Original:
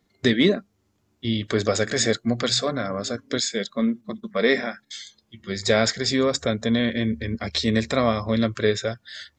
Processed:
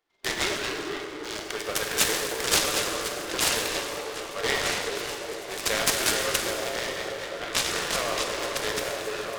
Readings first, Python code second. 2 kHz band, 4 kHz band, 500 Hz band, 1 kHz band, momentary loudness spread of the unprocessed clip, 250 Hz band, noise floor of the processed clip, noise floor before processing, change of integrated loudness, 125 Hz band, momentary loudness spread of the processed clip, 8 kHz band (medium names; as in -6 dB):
0.0 dB, -0.5 dB, -6.5 dB, +0.5 dB, 12 LU, -14.5 dB, -37 dBFS, -69 dBFS, -3.5 dB, -14.5 dB, 10 LU, +4.0 dB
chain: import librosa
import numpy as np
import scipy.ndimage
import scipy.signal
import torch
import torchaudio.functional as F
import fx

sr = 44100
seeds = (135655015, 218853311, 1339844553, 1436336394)

p1 = fx.wiener(x, sr, points=9)
p2 = fx.echo_pitch(p1, sr, ms=87, semitones=-5, count=3, db_per_echo=-6.0)
p3 = fx.high_shelf(p2, sr, hz=3200.0, db=-10.5)
p4 = np.clip(p3, -10.0 ** (-22.5 / 20.0), 10.0 ** (-22.5 / 20.0))
p5 = p3 + F.gain(torch.from_numpy(p4), -5.5).numpy()
p6 = fx.brickwall_highpass(p5, sr, low_hz=280.0)
p7 = np.diff(p6, prepend=0.0)
p8 = fx.echo_stepped(p7, sr, ms=426, hz=370.0, octaves=0.7, feedback_pct=70, wet_db=-1)
p9 = fx.rev_plate(p8, sr, seeds[0], rt60_s=2.6, hf_ratio=0.75, predelay_ms=0, drr_db=0.5)
p10 = fx.noise_mod_delay(p9, sr, seeds[1], noise_hz=1300.0, depth_ms=0.07)
y = F.gain(torch.from_numpy(p10), 8.5).numpy()